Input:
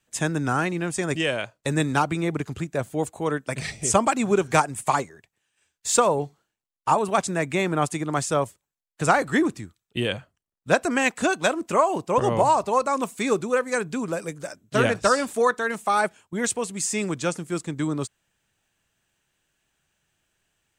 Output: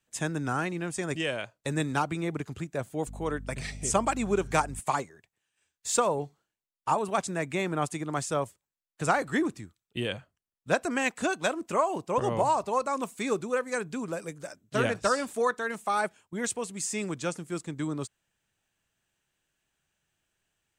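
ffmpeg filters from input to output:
-filter_complex "[0:a]asettb=1/sr,asplit=3[s0][s1][s2];[s0]atrim=end=3.074[s3];[s1]atrim=start=3.07:end=4.8,asetpts=PTS-STARTPTS,afade=t=in:d=0.004:c=qsin,afade=t=out:st=1.726:d=0.004:c=qsin,aeval=exprs='val(0)+0.02*(sin(2*PI*50*n/s)+sin(2*PI*2*50*n/s)/2+sin(2*PI*3*50*n/s)/3+sin(2*PI*4*50*n/s)/4+sin(2*PI*5*50*n/s)/5)':c=same[s4];[s2]atrim=start=4.796[s5];[s3][s4]acrossfade=d=0.004:c1=hsin:c2=qsin[s6];[s6][s5]acrossfade=d=0.004:c1=qsin:c2=hsin,volume=0.501"

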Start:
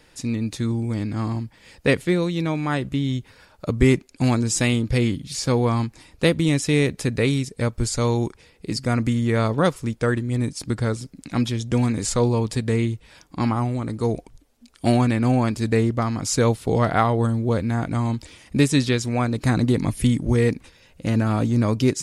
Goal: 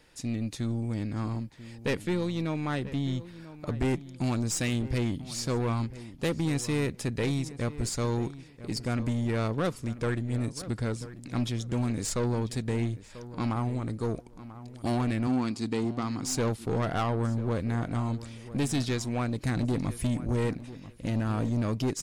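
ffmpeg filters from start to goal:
-filter_complex "[0:a]aeval=exprs='(tanh(7.94*val(0)+0.35)-tanh(0.35))/7.94':c=same,asettb=1/sr,asplit=3[s0][s1][s2];[s0]atrim=end=15.274[s3];[s1]atrim=start=15.27:end=16.26,asetpts=PTS-STARTPTS,afade=t=in:d=0.004:c=qsin,afade=t=out:st=0.986:d=0.004:c=qsin,highpass=160,equalizer=f=260:t=q:w=4:g=5,equalizer=f=600:t=q:w=4:g=-9,equalizer=f=1700:t=q:w=4:g=-4,equalizer=f=4400:t=q:w=4:g=5,lowpass=f=9900:w=0.5412,lowpass=f=9900:w=1.3066[s4];[s2]atrim=start=16.256[s5];[s3][s4]acrossfade=d=0.004:c1=hsin:c2=qsin[s6];[s6][s5]acrossfade=d=0.004:c1=qsin:c2=hsin,asplit=2[s7][s8];[s8]adelay=990,lowpass=f=2500:p=1,volume=0.178,asplit=2[s9][s10];[s10]adelay=990,lowpass=f=2500:p=1,volume=0.24,asplit=2[s11][s12];[s12]adelay=990,lowpass=f=2500:p=1,volume=0.24[s13];[s7][s9][s11][s13]amix=inputs=4:normalize=0,volume=0.562"

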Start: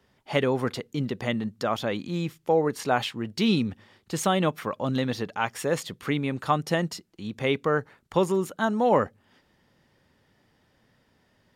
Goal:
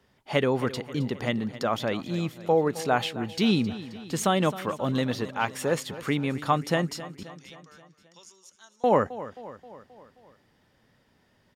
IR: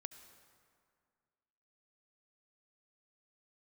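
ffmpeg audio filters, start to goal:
-filter_complex "[0:a]asettb=1/sr,asplit=3[s0][s1][s2];[s0]atrim=end=7.234[s3];[s1]atrim=start=7.23:end=8.84,asetpts=PTS-STARTPTS,afade=t=in:d=0.004:c=qsin,afade=t=out:st=1.606:d=0.004:c=qsin,bandpass=f=5800:t=q:w=4.9:csg=0[s4];[s2]atrim=start=8.836[s5];[s3][s4]acrossfade=d=0.004:c1=hsin:c2=qsin[s6];[s6][s5]acrossfade=d=0.004:c1=qsin:c2=hsin,aecho=1:1:265|530|795|1060|1325:0.168|0.094|0.0526|0.0295|0.0165"

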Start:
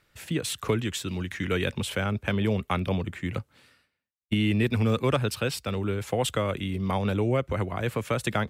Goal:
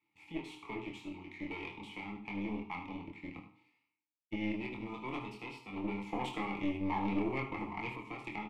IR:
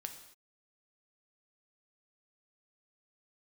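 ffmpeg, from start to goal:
-filter_complex "[0:a]aeval=exprs='if(lt(val(0),0),0.251*val(0),val(0))':c=same,lowshelf=f=190:g=-3.5,asplit=2[s0][s1];[s1]adelay=24,volume=0.596[s2];[s0][s2]amix=inputs=2:normalize=0,bandreject=f=61.52:t=h:w=4,bandreject=f=123.04:t=h:w=4,bandreject=f=184.56:t=h:w=4,bandreject=f=246.08:t=h:w=4,bandreject=f=307.6:t=h:w=4,bandreject=f=369.12:t=h:w=4,bandreject=f=430.64:t=h:w=4,bandreject=f=492.16:t=h:w=4,bandreject=f=553.68:t=h:w=4,bandreject=f=615.2:t=h:w=4,bandreject=f=676.72:t=h:w=4,bandreject=f=738.24:t=h:w=4,bandreject=f=799.76:t=h:w=4,bandreject=f=861.28:t=h:w=4,bandreject=f=922.8:t=h:w=4,bandreject=f=984.32:t=h:w=4,bandreject=f=1045.84:t=h:w=4,bandreject=f=1107.36:t=h:w=4,bandreject=f=1168.88:t=h:w=4,bandreject=f=1230.4:t=h:w=4,bandreject=f=1291.92:t=h:w=4,bandreject=f=1353.44:t=h:w=4,bandreject=f=1414.96:t=h:w=4,bandreject=f=1476.48:t=h:w=4,bandreject=f=1538:t=h:w=4,bandreject=f=1599.52:t=h:w=4,bandreject=f=1661.04:t=h:w=4,bandreject=f=1722.56:t=h:w=4,bandreject=f=1784.08:t=h:w=4,bandreject=f=1845.6:t=h:w=4,bandreject=f=1907.12:t=h:w=4[s3];[1:a]atrim=start_sample=2205,afade=t=out:st=0.2:d=0.01,atrim=end_sample=9261,asetrate=61740,aresample=44100[s4];[s3][s4]afir=irnorm=-1:irlink=0,asettb=1/sr,asplit=3[s5][s6][s7];[s5]atrim=end=5.764[s8];[s6]atrim=start=5.76:end=7.96,asetpts=PTS-STARTPTS,afade=t=in:d=0.004:c=qsin,afade=t=out:st=2.196:d=0.004:c=qsin,acontrast=47[s9];[s7]atrim=start=7.956[s10];[s8][s9]acrossfade=d=0.004:c1=hsin:c2=qsin[s11];[s11][s10]acrossfade=d=0.004:c1=qsin:c2=hsin,asplit=3[s12][s13][s14];[s12]bandpass=f=300:t=q:w=8,volume=1[s15];[s13]bandpass=f=870:t=q:w=8,volume=0.501[s16];[s14]bandpass=f=2240:t=q:w=8,volume=0.355[s17];[s15][s16][s17]amix=inputs=3:normalize=0,aecho=1:1:75|150|225:0.282|0.0733|0.0191,aeval=exprs='0.0282*(cos(1*acos(clip(val(0)/0.0282,-1,1)))-cos(1*PI/2))+0.00251*(cos(4*acos(clip(val(0)/0.0282,-1,1)))-cos(4*PI/2))':c=same,asuperstop=centerf=1500:order=12:qfactor=7.9,equalizer=f=250:w=3.2:g=-9.5,volume=3.35"

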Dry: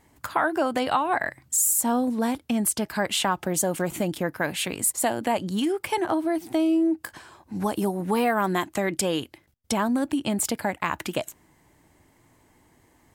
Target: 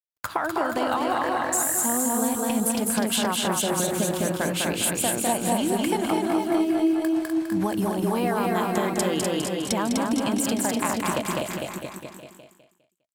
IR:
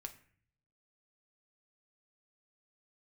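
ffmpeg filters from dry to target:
-filter_complex "[0:a]aeval=exprs='sgn(val(0))*max(abs(val(0))-0.00376,0)':c=same,asplit=2[s0][s1];[s1]aecho=0:1:203|406|609|812:0.631|0.215|0.0729|0.0248[s2];[s0][s2]amix=inputs=2:normalize=0,adynamicequalizer=threshold=0.00501:dfrequency=1900:dqfactor=2.8:tfrequency=1900:tqfactor=2.8:attack=5:release=100:ratio=0.375:range=3:mode=cutabove:tftype=bell,acompressor=threshold=0.0501:ratio=6,asplit=2[s3][s4];[s4]aecho=0:1:250|475|677.5|859.8|1024:0.631|0.398|0.251|0.158|0.1[s5];[s3][s5]amix=inputs=2:normalize=0,volume=1.5"

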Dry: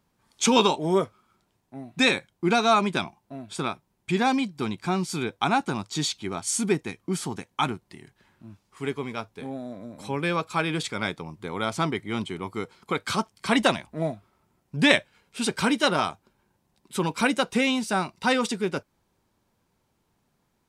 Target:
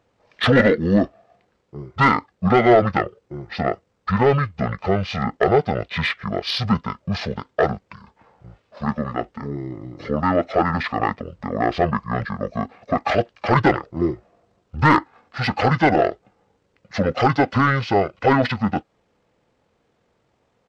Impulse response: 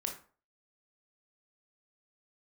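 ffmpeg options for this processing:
-filter_complex "[0:a]asplit=2[s0][s1];[s1]highpass=f=720:p=1,volume=7.94,asoftclip=type=tanh:threshold=0.841[s2];[s0][s2]amix=inputs=2:normalize=0,lowpass=f=2800:p=1,volume=0.501,asetrate=23361,aresample=44100,atempo=1.88775"

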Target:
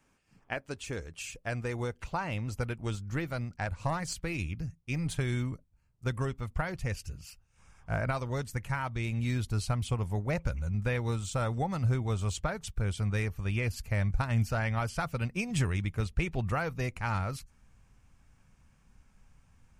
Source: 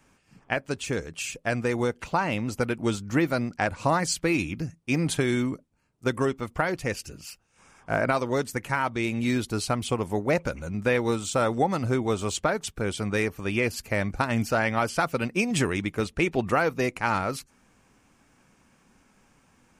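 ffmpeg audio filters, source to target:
-filter_complex "[0:a]asubboost=boost=9.5:cutoff=97,asettb=1/sr,asplit=3[s0][s1][s2];[s0]atrim=end=2.764[s3];[s1]atrim=start=2.76:end=5.21,asetpts=PTS-STARTPTS,afade=t=in:d=0.004:c=qsin,afade=t=out:st=2.446:d=0.004:c=qsin,aeval=exprs='0.562*(cos(1*acos(clip(val(0)/0.562,-1,1)))-cos(1*PI/2))+0.0398*(cos(3*acos(clip(val(0)/0.562,-1,1)))-cos(3*PI/2))+0.0178*(cos(4*acos(clip(val(0)/0.562,-1,1)))-cos(4*PI/2))+0.0562*(cos(6*acos(clip(val(0)/0.562,-1,1)))-cos(6*PI/2))+0.0158*(cos(8*acos(clip(val(0)/0.562,-1,1)))-cos(8*PI/2))':c=same[s4];[s2]atrim=start=5.206[s5];[s3][s4]acrossfade=d=0.004:c1=hsin:c2=qsin[s6];[s6][s5]acrossfade=d=0.004:c1=qsin:c2=hsin,volume=0.398"

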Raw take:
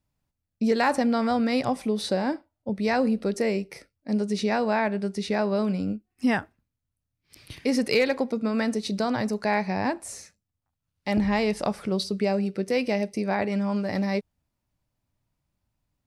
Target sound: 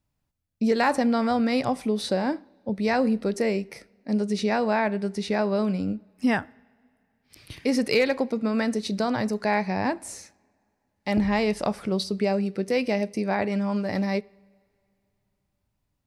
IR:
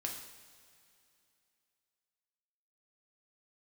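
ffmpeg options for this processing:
-filter_complex "[0:a]asplit=2[s0][s1];[1:a]atrim=start_sample=2205,lowpass=4400[s2];[s1][s2]afir=irnorm=-1:irlink=0,volume=0.1[s3];[s0][s3]amix=inputs=2:normalize=0"

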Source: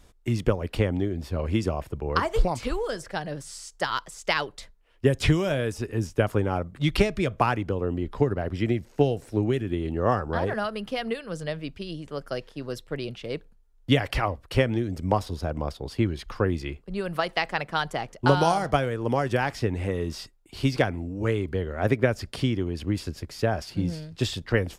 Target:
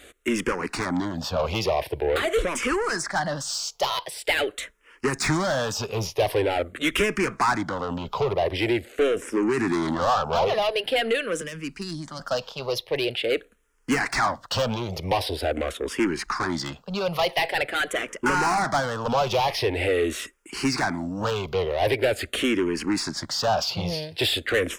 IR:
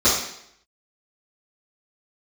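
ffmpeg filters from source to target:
-filter_complex "[0:a]asplit=3[s0][s1][s2];[s0]afade=t=out:st=9.57:d=0.02[s3];[s1]acontrast=47,afade=t=in:st=9.57:d=0.02,afade=t=out:st=10.04:d=0.02[s4];[s2]afade=t=in:st=10.04:d=0.02[s5];[s3][s4][s5]amix=inputs=3:normalize=0,asplit=2[s6][s7];[s7]highpass=f=720:p=1,volume=28.2,asoftclip=type=tanh:threshold=0.473[s8];[s6][s8]amix=inputs=2:normalize=0,lowpass=f=6900:p=1,volume=0.501,asettb=1/sr,asplit=3[s9][s10][s11];[s9]atrim=end=11.414[s12];[s10]atrim=start=11.41:end=12.2,asetpts=PTS-STARTPTS,afade=t=in:d=0.004:c=qsin,afade=t=out:st=0.786:d=0.004:c=qsin,acrossover=split=240|3000[s13][s14][s15];[s14]acompressor=threshold=0.0282:ratio=3[s16];[s13][s16][s15]amix=inputs=3:normalize=0[s17];[s11]atrim=start=12.196[s18];[s12][s17]acrossfade=d=0.004:c1=hsin:c2=qsin[s19];[s19][s18]acrossfade=d=0.004:c1=qsin:c2=hsin,asplit=2[s20][s21];[s21]afreqshift=-0.45[s22];[s20][s22]amix=inputs=2:normalize=1,volume=0.562"

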